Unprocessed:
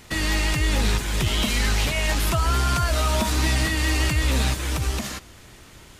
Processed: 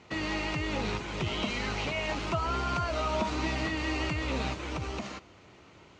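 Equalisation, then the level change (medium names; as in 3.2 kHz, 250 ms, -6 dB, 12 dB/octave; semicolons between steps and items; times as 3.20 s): distance through air 130 m; cabinet simulation 120–6900 Hz, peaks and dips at 130 Hz -5 dB, 230 Hz -5 dB, 1.7 kHz -8 dB, 3.5 kHz -6 dB, 5.1 kHz -5 dB; -3.0 dB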